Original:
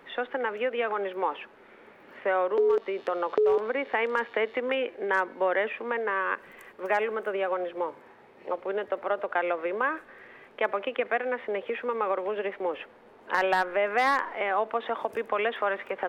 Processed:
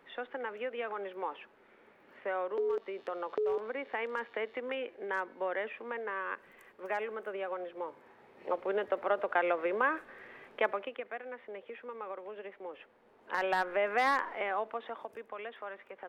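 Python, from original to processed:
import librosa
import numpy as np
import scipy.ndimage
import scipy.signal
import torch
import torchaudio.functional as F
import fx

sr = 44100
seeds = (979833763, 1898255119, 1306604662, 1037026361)

y = fx.gain(x, sr, db=fx.line((7.8, -9.0), (8.52, -2.0), (10.61, -2.0), (11.05, -14.0), (12.68, -14.0), (13.7, -4.5), (14.33, -4.5), (15.28, -15.5)))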